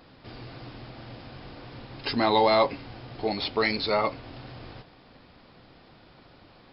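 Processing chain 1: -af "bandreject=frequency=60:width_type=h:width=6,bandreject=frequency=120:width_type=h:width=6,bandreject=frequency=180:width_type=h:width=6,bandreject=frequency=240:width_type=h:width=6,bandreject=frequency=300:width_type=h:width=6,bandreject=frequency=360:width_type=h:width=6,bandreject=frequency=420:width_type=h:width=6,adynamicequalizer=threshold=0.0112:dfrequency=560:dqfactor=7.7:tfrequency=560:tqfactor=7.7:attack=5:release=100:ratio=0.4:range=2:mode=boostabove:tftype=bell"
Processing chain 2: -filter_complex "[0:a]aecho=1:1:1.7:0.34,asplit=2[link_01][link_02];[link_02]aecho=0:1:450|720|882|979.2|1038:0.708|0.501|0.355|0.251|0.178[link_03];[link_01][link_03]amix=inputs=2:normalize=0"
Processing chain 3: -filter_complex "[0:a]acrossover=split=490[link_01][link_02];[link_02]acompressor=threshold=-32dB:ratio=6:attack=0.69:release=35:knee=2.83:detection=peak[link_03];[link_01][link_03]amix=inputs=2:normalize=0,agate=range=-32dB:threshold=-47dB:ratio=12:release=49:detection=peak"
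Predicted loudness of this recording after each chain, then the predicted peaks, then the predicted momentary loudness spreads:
−24.5, −23.5, −32.5 LKFS; −9.0, −9.0, −15.5 dBFS; 24, 21, 17 LU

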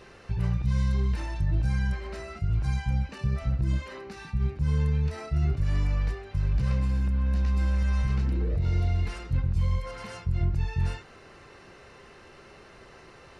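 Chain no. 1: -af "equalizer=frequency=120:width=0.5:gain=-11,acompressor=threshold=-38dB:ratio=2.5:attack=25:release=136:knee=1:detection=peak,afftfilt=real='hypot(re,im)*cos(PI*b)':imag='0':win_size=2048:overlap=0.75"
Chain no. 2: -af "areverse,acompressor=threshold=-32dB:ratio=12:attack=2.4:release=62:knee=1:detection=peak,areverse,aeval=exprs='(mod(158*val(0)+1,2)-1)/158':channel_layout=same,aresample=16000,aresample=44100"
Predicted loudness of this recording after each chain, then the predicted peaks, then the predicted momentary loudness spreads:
−44.5, −48.5 LKFS; −25.5, −41.0 dBFS; 13, 2 LU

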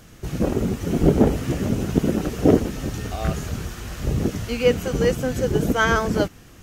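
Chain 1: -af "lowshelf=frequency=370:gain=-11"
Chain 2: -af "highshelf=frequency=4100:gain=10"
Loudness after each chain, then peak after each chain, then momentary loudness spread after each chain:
−27.5, −22.0 LKFS; −7.5, −2.0 dBFS; 12, 10 LU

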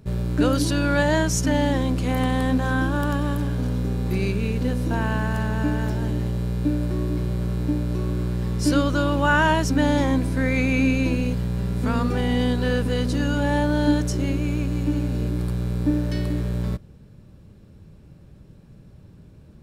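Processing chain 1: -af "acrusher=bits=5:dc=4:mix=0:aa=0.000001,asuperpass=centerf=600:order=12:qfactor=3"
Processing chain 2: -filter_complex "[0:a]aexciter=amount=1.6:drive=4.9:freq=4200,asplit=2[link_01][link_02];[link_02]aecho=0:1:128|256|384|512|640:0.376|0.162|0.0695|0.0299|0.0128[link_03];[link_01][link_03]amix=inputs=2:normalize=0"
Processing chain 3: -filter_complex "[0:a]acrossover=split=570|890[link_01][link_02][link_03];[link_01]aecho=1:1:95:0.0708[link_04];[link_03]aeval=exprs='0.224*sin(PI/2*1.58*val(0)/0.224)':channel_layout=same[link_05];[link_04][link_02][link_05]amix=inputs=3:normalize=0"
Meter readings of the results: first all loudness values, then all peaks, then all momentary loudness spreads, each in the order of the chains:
−34.0, −22.5, −21.0 LKFS; −18.5, −5.5, −5.5 dBFS; 14, 6, 8 LU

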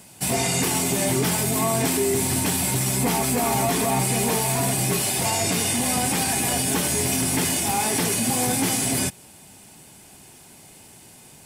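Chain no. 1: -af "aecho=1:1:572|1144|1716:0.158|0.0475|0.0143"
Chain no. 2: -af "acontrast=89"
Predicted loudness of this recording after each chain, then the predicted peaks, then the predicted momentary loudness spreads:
−21.0, −14.5 LKFS; −9.5, −5.0 dBFS; 1, 0 LU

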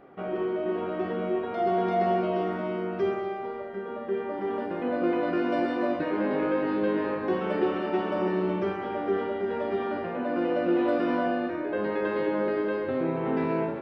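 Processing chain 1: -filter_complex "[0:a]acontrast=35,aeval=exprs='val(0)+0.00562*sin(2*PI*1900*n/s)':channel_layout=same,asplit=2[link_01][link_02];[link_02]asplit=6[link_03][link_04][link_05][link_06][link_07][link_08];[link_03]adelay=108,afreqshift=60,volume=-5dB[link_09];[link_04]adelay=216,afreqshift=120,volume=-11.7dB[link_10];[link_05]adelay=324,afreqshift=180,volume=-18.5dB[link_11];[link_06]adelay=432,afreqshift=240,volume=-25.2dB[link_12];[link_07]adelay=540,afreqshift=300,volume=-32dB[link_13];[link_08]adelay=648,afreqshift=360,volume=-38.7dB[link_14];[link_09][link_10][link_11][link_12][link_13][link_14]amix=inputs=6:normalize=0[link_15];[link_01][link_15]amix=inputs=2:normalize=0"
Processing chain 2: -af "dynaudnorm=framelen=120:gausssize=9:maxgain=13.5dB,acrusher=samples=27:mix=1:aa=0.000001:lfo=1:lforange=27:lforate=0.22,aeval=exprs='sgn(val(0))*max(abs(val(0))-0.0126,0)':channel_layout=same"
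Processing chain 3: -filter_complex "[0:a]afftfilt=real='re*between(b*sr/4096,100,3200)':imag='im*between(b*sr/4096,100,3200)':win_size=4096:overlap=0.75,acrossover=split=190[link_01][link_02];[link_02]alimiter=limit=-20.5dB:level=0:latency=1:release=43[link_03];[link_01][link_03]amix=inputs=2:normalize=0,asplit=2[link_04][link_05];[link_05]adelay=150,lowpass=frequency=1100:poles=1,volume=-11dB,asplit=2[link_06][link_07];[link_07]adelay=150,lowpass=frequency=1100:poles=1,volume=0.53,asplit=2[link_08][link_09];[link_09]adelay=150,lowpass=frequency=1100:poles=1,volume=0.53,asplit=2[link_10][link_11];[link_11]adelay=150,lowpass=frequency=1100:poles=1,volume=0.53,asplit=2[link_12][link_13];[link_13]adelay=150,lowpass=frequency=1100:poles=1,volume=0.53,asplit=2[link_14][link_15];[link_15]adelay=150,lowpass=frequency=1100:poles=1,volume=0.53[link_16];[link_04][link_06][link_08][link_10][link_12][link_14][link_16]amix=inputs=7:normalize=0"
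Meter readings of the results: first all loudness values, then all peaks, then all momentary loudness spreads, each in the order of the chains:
−21.5, −16.5, −29.0 LKFS; −7.0, −3.0, −17.0 dBFS; 6, 5, 4 LU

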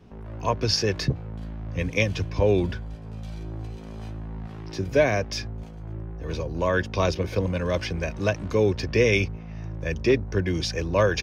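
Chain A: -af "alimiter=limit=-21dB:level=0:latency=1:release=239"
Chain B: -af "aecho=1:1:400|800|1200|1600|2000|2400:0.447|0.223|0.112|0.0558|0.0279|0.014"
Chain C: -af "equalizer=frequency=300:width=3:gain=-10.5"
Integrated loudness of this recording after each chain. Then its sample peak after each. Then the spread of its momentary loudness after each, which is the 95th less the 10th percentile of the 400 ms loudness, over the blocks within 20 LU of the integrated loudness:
−33.0, −25.0, −26.5 LKFS; −21.0, −8.0, −8.5 dBFS; 7, 13, 15 LU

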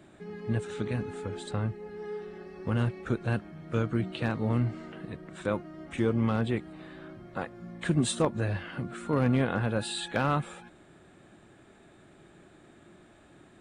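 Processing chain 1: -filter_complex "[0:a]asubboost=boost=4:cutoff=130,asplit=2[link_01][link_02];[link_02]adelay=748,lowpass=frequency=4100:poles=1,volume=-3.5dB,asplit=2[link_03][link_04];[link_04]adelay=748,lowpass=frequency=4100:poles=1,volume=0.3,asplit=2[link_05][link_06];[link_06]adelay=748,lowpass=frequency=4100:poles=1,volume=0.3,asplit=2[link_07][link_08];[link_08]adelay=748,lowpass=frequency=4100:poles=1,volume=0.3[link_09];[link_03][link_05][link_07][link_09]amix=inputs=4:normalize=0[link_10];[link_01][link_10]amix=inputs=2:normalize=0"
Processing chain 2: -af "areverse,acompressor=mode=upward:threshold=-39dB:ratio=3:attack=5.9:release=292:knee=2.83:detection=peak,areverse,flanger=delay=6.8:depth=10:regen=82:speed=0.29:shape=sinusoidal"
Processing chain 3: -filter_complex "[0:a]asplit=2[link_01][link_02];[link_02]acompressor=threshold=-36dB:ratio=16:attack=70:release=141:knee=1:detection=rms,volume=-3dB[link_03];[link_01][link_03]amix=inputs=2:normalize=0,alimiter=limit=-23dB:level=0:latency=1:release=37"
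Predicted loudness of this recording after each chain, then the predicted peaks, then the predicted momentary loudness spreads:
−27.5, −35.5, −34.5 LKFS; −11.5, −16.5, −23.0 dBFS; 13, 22, 20 LU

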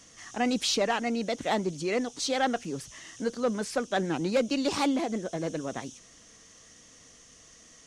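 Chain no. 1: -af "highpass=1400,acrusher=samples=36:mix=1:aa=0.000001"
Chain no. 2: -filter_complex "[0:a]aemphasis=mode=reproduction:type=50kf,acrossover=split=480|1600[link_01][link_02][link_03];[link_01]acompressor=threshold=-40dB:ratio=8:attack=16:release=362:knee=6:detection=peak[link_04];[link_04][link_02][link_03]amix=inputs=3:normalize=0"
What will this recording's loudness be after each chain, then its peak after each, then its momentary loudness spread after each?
−39.0, −33.5 LKFS; −18.5, −16.5 dBFS; 22, 10 LU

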